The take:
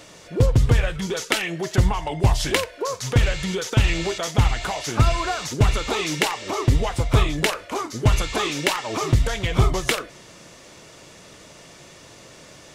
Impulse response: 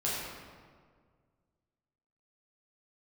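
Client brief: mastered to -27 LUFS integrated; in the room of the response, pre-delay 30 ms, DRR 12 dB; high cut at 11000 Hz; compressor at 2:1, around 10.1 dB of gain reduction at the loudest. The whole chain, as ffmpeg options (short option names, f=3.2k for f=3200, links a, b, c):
-filter_complex "[0:a]lowpass=11k,acompressor=threshold=-31dB:ratio=2,asplit=2[a][b];[1:a]atrim=start_sample=2205,adelay=30[c];[b][c]afir=irnorm=-1:irlink=0,volume=-19dB[d];[a][d]amix=inputs=2:normalize=0,volume=3dB"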